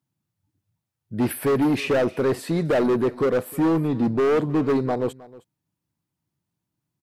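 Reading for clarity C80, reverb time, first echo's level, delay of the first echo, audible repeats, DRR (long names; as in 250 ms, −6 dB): no reverb audible, no reverb audible, −20.5 dB, 313 ms, 1, no reverb audible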